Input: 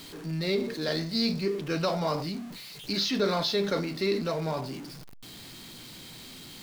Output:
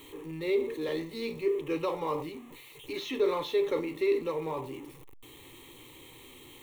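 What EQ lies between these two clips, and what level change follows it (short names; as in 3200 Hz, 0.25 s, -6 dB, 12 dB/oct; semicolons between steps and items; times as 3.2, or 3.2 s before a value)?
bell 430 Hz +5 dB 2.8 oct; fixed phaser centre 1000 Hz, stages 8; -3.0 dB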